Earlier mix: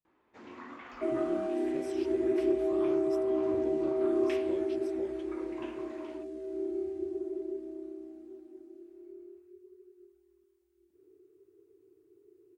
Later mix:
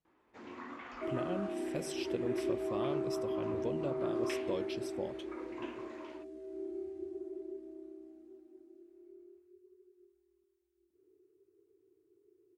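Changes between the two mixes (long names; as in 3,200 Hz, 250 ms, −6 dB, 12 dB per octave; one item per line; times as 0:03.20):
speech +9.0 dB
second sound −7.0 dB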